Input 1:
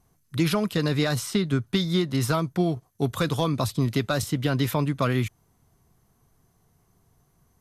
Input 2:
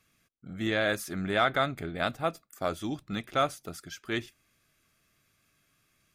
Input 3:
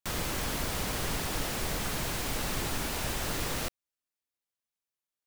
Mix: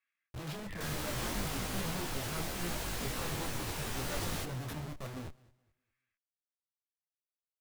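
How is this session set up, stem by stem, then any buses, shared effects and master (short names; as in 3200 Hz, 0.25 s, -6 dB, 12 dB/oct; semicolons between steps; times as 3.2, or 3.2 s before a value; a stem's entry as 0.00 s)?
-9.5 dB, 0.00 s, no send, echo send -23 dB, low shelf 130 Hz -3.5 dB; Schmitt trigger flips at -29.5 dBFS
-5.5 dB, 0.00 s, no send, no echo send, band-pass 1900 Hz, Q 2.9; auto duck -13 dB, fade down 1.70 s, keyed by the first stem
-2.0 dB, 0.75 s, no send, echo send -16.5 dB, dry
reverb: off
echo: feedback echo 0.21 s, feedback 27%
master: detuned doubles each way 24 cents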